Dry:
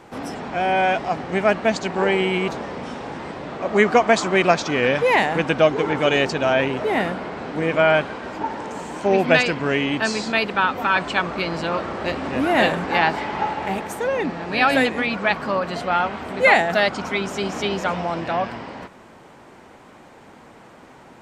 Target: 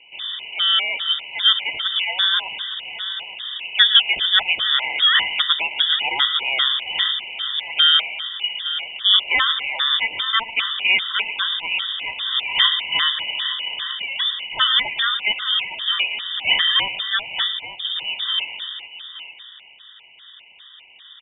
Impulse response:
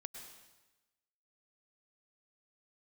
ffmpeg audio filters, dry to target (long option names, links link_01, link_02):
-filter_complex "[0:a]asplit=3[link_01][link_02][link_03];[link_01]afade=type=out:start_time=17.44:duration=0.02[link_04];[link_02]equalizer=frequency=2500:width_type=o:width=2.7:gain=-14.5,afade=type=in:start_time=17.44:duration=0.02,afade=type=out:start_time=17.95:duration=0.02[link_05];[link_03]afade=type=in:start_time=17.95:duration=0.02[link_06];[link_04][link_05][link_06]amix=inputs=3:normalize=0,aecho=1:1:114|258|868:0.188|0.15|0.237,asplit=2[link_07][link_08];[1:a]atrim=start_sample=2205[link_09];[link_08][link_09]afir=irnorm=-1:irlink=0,volume=-8dB[link_10];[link_07][link_10]amix=inputs=2:normalize=0,lowpass=frequency=3200:width_type=q:width=0.5098,lowpass=frequency=3200:width_type=q:width=0.6013,lowpass=frequency=3200:width_type=q:width=0.9,lowpass=frequency=3200:width_type=q:width=2.563,afreqshift=-3800,afftfilt=real='re*gt(sin(2*PI*2.5*pts/sr)*(1-2*mod(floor(b*sr/1024/1000),2)),0)':imag='im*gt(sin(2*PI*2.5*pts/sr)*(1-2*mod(floor(b*sr/1024/1000),2)),0)':win_size=1024:overlap=0.75,volume=1dB"